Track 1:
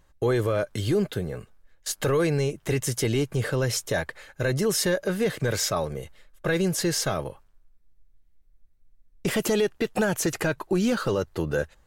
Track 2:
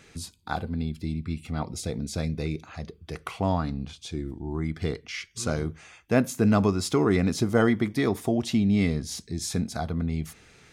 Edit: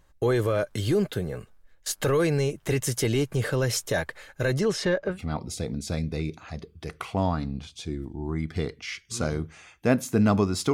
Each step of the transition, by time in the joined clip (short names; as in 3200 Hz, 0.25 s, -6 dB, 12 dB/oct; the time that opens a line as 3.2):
track 1
4.58–5.2 LPF 6900 Hz -> 1700 Hz
5.13 switch to track 2 from 1.39 s, crossfade 0.14 s